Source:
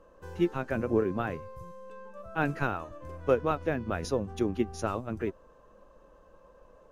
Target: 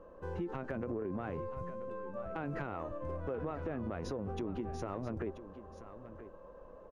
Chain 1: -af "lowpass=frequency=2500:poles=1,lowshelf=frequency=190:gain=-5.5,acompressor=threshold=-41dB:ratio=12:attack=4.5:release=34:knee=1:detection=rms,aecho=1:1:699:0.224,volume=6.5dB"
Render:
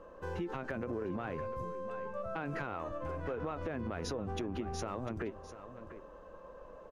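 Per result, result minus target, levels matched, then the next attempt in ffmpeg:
echo 285 ms early; 2,000 Hz band +3.5 dB
-af "lowpass=frequency=2500:poles=1,lowshelf=frequency=190:gain=-5.5,acompressor=threshold=-41dB:ratio=12:attack=4.5:release=34:knee=1:detection=rms,aecho=1:1:984:0.224,volume=6.5dB"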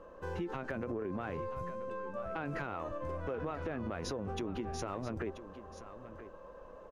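2,000 Hz band +4.0 dB
-af "lowpass=frequency=760:poles=1,lowshelf=frequency=190:gain=-5.5,acompressor=threshold=-41dB:ratio=12:attack=4.5:release=34:knee=1:detection=rms,aecho=1:1:984:0.224,volume=6.5dB"

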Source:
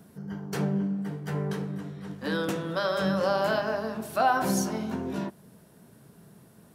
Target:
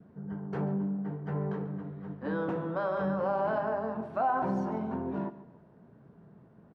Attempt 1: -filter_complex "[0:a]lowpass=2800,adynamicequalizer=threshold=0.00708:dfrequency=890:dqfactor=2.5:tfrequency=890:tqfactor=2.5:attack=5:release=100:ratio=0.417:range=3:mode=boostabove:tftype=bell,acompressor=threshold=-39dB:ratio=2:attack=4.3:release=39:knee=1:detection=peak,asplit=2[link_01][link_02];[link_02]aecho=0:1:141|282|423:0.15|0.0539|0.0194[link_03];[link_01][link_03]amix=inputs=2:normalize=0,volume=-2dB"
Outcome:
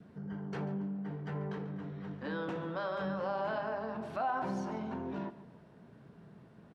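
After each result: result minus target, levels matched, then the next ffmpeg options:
downward compressor: peak gain reduction +6 dB; 2,000 Hz band +3.5 dB
-filter_complex "[0:a]lowpass=2800,adynamicequalizer=threshold=0.00708:dfrequency=890:dqfactor=2.5:tfrequency=890:tqfactor=2.5:attack=5:release=100:ratio=0.417:range=3:mode=boostabove:tftype=bell,acompressor=threshold=-27.5dB:ratio=2:attack=4.3:release=39:knee=1:detection=peak,asplit=2[link_01][link_02];[link_02]aecho=0:1:141|282|423:0.15|0.0539|0.0194[link_03];[link_01][link_03]amix=inputs=2:normalize=0,volume=-2dB"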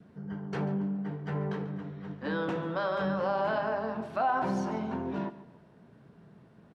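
2,000 Hz band +4.0 dB
-filter_complex "[0:a]lowpass=1300,adynamicequalizer=threshold=0.00708:dfrequency=890:dqfactor=2.5:tfrequency=890:tqfactor=2.5:attack=5:release=100:ratio=0.417:range=3:mode=boostabove:tftype=bell,acompressor=threshold=-27.5dB:ratio=2:attack=4.3:release=39:knee=1:detection=peak,asplit=2[link_01][link_02];[link_02]aecho=0:1:141|282|423:0.15|0.0539|0.0194[link_03];[link_01][link_03]amix=inputs=2:normalize=0,volume=-2dB"

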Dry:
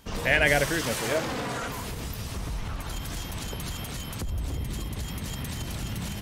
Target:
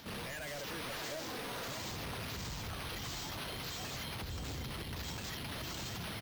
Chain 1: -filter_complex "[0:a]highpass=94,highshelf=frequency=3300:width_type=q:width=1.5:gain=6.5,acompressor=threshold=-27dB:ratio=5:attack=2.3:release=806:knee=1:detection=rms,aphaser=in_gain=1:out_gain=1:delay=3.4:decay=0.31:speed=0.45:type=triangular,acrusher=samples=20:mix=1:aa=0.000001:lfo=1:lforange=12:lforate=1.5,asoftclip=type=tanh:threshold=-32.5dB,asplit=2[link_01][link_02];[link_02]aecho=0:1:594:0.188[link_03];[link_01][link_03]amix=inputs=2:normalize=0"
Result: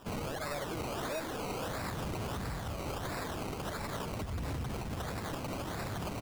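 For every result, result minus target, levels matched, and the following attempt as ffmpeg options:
echo-to-direct −8 dB; soft clipping: distortion −6 dB; sample-and-hold swept by an LFO: distortion +4 dB
-filter_complex "[0:a]highpass=94,highshelf=frequency=3300:width_type=q:width=1.5:gain=6.5,acompressor=threshold=-27dB:ratio=5:attack=2.3:release=806:knee=1:detection=rms,aphaser=in_gain=1:out_gain=1:delay=3.4:decay=0.31:speed=0.45:type=triangular,acrusher=samples=20:mix=1:aa=0.000001:lfo=1:lforange=12:lforate=1.5,asoftclip=type=tanh:threshold=-32.5dB,asplit=2[link_01][link_02];[link_02]aecho=0:1:594:0.473[link_03];[link_01][link_03]amix=inputs=2:normalize=0"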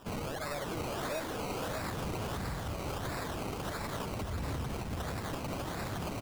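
soft clipping: distortion −6 dB; sample-and-hold swept by an LFO: distortion +4 dB
-filter_complex "[0:a]highpass=94,highshelf=frequency=3300:width_type=q:width=1.5:gain=6.5,acompressor=threshold=-27dB:ratio=5:attack=2.3:release=806:knee=1:detection=rms,aphaser=in_gain=1:out_gain=1:delay=3.4:decay=0.31:speed=0.45:type=triangular,acrusher=samples=20:mix=1:aa=0.000001:lfo=1:lforange=12:lforate=1.5,asoftclip=type=tanh:threshold=-40.5dB,asplit=2[link_01][link_02];[link_02]aecho=0:1:594:0.473[link_03];[link_01][link_03]amix=inputs=2:normalize=0"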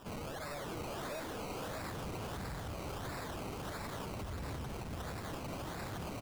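sample-and-hold swept by an LFO: distortion +4 dB
-filter_complex "[0:a]highpass=94,highshelf=frequency=3300:width_type=q:width=1.5:gain=6.5,acompressor=threshold=-27dB:ratio=5:attack=2.3:release=806:knee=1:detection=rms,aphaser=in_gain=1:out_gain=1:delay=3.4:decay=0.31:speed=0.45:type=triangular,acrusher=samples=5:mix=1:aa=0.000001:lfo=1:lforange=3:lforate=1.5,asoftclip=type=tanh:threshold=-40.5dB,asplit=2[link_01][link_02];[link_02]aecho=0:1:594:0.473[link_03];[link_01][link_03]amix=inputs=2:normalize=0"

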